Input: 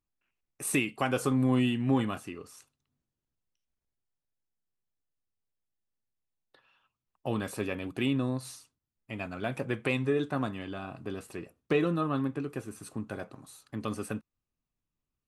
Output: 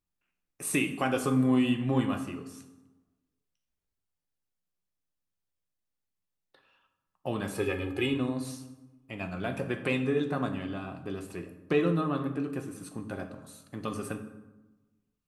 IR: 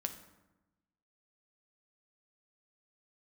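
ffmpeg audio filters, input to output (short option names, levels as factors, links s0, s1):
-filter_complex "[0:a]asettb=1/sr,asplit=3[s0][s1][s2];[s0]atrim=end=7.554[s3];[s1]atrim=start=7.55:end=8.14,asetpts=PTS-STARTPTS,afade=t=in:d=0.004:c=qsin,afade=t=out:st=0.586:d=0.004:c=qsin,aecho=1:1:2.4:0.83,atrim=end_sample=26019[s4];[s2]atrim=start=8.136[s5];[s3][s4]acrossfade=d=0.004:c1=hsin:c2=qsin[s6];[s6][s5]acrossfade=d=0.004:c1=qsin:c2=hsin[s7];[1:a]atrim=start_sample=2205,asetrate=41013,aresample=44100[s8];[s7][s8]afir=irnorm=-1:irlink=0"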